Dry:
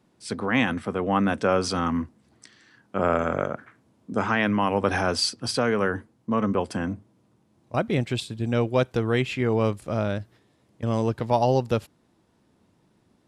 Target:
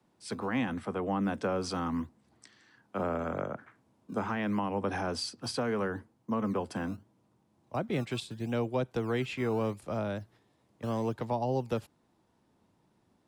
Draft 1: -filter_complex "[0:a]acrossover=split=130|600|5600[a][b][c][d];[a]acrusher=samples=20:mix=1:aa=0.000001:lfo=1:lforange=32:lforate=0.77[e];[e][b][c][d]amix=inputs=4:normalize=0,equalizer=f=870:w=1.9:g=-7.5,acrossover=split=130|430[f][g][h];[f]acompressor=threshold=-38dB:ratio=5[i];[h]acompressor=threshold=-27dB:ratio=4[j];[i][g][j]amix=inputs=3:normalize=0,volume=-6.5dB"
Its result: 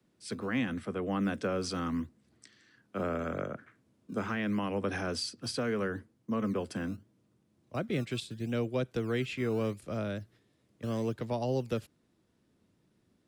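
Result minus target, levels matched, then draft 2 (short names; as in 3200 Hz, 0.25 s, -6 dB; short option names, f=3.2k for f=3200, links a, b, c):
1000 Hz band -4.0 dB
-filter_complex "[0:a]acrossover=split=130|600|5600[a][b][c][d];[a]acrusher=samples=20:mix=1:aa=0.000001:lfo=1:lforange=32:lforate=0.77[e];[e][b][c][d]amix=inputs=4:normalize=0,equalizer=f=870:w=1.9:g=4.5,acrossover=split=130|430[f][g][h];[f]acompressor=threshold=-38dB:ratio=5[i];[h]acompressor=threshold=-27dB:ratio=4[j];[i][g][j]amix=inputs=3:normalize=0,volume=-6.5dB"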